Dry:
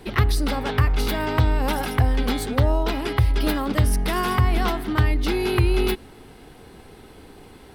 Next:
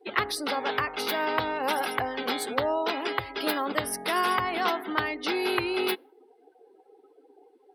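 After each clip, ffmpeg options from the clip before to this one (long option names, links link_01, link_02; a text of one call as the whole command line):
ffmpeg -i in.wav -af "highpass=440,afftdn=noise_reduction=29:noise_floor=-41" out.wav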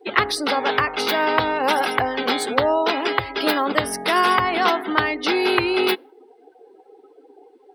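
ffmpeg -i in.wav -af "equalizer=frequency=12000:width=2.2:gain=-12.5,volume=8dB" out.wav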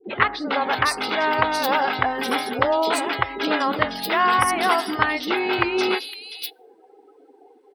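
ffmpeg -i in.wav -filter_complex "[0:a]acrossover=split=410|3600[link_01][link_02][link_03];[link_02]adelay=40[link_04];[link_03]adelay=550[link_05];[link_01][link_04][link_05]amix=inputs=3:normalize=0" out.wav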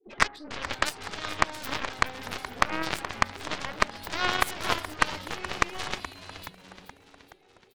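ffmpeg -i in.wav -filter_complex "[0:a]aeval=exprs='0.794*(cos(1*acos(clip(val(0)/0.794,-1,1)))-cos(1*PI/2))+0.0891*(cos(3*acos(clip(val(0)/0.794,-1,1)))-cos(3*PI/2))+0.1*(cos(4*acos(clip(val(0)/0.794,-1,1)))-cos(4*PI/2))+0.1*(cos(7*acos(clip(val(0)/0.794,-1,1)))-cos(7*PI/2))':channel_layout=same,asplit=7[link_01][link_02][link_03][link_04][link_05][link_06][link_07];[link_02]adelay=424,afreqshift=-94,volume=-13dB[link_08];[link_03]adelay=848,afreqshift=-188,volume=-17.9dB[link_09];[link_04]adelay=1272,afreqshift=-282,volume=-22.8dB[link_10];[link_05]adelay=1696,afreqshift=-376,volume=-27.6dB[link_11];[link_06]adelay=2120,afreqshift=-470,volume=-32.5dB[link_12];[link_07]adelay=2544,afreqshift=-564,volume=-37.4dB[link_13];[link_01][link_08][link_09][link_10][link_11][link_12][link_13]amix=inputs=7:normalize=0,volume=-1dB" out.wav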